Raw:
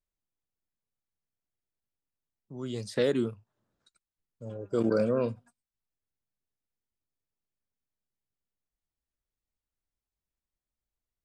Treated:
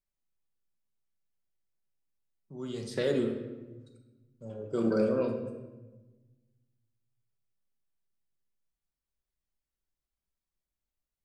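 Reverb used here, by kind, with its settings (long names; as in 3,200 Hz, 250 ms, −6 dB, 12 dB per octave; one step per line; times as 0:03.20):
rectangular room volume 750 cubic metres, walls mixed, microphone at 1.1 metres
level −3.5 dB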